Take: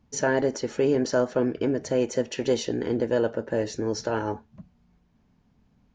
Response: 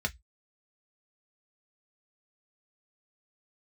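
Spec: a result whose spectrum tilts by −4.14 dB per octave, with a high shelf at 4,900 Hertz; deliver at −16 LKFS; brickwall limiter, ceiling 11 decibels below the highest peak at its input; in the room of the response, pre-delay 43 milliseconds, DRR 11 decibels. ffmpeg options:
-filter_complex "[0:a]highshelf=frequency=4900:gain=4,alimiter=limit=-22dB:level=0:latency=1,asplit=2[link_01][link_02];[1:a]atrim=start_sample=2205,adelay=43[link_03];[link_02][link_03]afir=irnorm=-1:irlink=0,volume=-16.5dB[link_04];[link_01][link_04]amix=inputs=2:normalize=0,volume=16dB"

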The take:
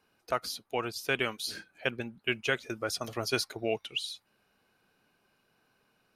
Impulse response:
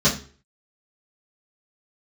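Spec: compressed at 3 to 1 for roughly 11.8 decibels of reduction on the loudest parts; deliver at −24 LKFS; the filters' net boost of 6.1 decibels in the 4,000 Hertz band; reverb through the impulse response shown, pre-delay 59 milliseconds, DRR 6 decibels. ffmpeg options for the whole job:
-filter_complex "[0:a]equalizer=frequency=4000:width_type=o:gain=8,acompressor=threshold=-39dB:ratio=3,asplit=2[link_01][link_02];[1:a]atrim=start_sample=2205,adelay=59[link_03];[link_02][link_03]afir=irnorm=-1:irlink=0,volume=-23dB[link_04];[link_01][link_04]amix=inputs=2:normalize=0,volume=15dB"

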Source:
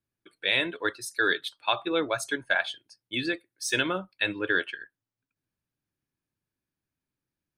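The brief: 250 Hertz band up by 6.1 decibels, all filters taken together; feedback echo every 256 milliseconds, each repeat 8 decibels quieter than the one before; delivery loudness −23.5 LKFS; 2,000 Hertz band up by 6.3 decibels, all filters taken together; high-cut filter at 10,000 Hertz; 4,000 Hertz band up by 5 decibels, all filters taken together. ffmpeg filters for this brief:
ffmpeg -i in.wav -af "lowpass=10000,equalizer=frequency=250:width_type=o:gain=8.5,equalizer=frequency=2000:width_type=o:gain=7.5,equalizer=frequency=4000:width_type=o:gain=3.5,aecho=1:1:256|512|768|1024|1280:0.398|0.159|0.0637|0.0255|0.0102,volume=-1dB" out.wav

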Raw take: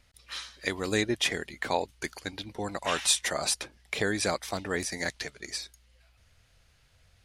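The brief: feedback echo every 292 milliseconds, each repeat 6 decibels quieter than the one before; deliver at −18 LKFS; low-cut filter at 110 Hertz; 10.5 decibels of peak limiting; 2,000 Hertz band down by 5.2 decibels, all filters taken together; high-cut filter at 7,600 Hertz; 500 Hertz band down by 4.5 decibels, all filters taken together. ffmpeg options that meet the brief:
ffmpeg -i in.wav -af "highpass=110,lowpass=7600,equalizer=frequency=500:width_type=o:gain=-5.5,equalizer=frequency=2000:width_type=o:gain=-6,alimiter=limit=-24dB:level=0:latency=1,aecho=1:1:292|584|876|1168|1460|1752:0.501|0.251|0.125|0.0626|0.0313|0.0157,volume=18.5dB" out.wav

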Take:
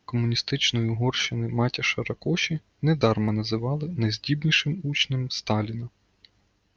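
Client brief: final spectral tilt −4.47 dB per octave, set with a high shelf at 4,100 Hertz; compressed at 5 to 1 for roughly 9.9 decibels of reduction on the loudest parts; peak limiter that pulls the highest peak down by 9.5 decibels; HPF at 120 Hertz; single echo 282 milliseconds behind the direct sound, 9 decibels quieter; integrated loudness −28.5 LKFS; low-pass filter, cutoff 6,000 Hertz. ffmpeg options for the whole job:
ffmpeg -i in.wav -af "highpass=120,lowpass=6000,highshelf=frequency=4100:gain=-5,acompressor=threshold=-26dB:ratio=5,alimiter=limit=-22dB:level=0:latency=1,aecho=1:1:282:0.355,volume=4dB" out.wav

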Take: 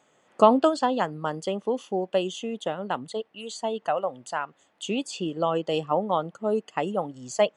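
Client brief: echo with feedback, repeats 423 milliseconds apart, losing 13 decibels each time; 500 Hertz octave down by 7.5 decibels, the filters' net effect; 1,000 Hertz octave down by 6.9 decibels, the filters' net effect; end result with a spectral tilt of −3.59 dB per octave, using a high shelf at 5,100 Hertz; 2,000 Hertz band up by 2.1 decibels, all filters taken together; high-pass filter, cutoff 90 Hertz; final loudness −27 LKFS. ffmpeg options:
ffmpeg -i in.wav -af "highpass=90,equalizer=frequency=500:width_type=o:gain=-7.5,equalizer=frequency=1000:width_type=o:gain=-7.5,equalizer=frequency=2000:width_type=o:gain=4.5,highshelf=frequency=5100:gain=7.5,aecho=1:1:423|846|1269:0.224|0.0493|0.0108,volume=4dB" out.wav

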